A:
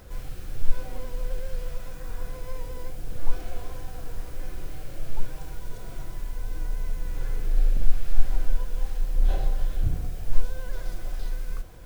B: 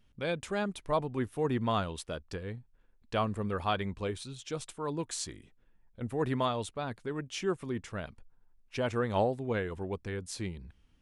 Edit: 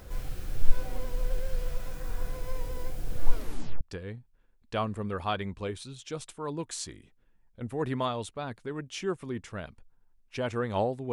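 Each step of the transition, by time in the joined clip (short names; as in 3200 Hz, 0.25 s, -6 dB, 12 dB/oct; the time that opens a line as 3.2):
A
3.32 tape stop 0.49 s
3.81 switch to B from 2.21 s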